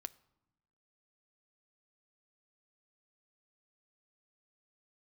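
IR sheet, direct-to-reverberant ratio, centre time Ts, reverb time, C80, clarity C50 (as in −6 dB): 13.5 dB, 2 ms, 0.95 s, 23.5 dB, 21.0 dB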